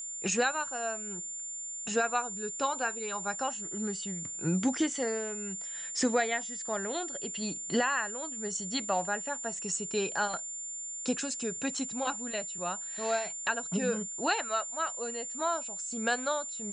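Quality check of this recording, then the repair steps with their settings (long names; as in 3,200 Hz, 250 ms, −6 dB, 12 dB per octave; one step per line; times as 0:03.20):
whistle 7,200 Hz −37 dBFS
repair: notch filter 7,200 Hz, Q 30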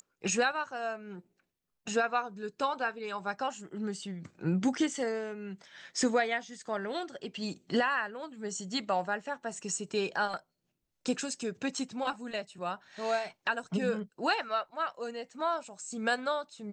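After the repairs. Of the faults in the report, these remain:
none of them is left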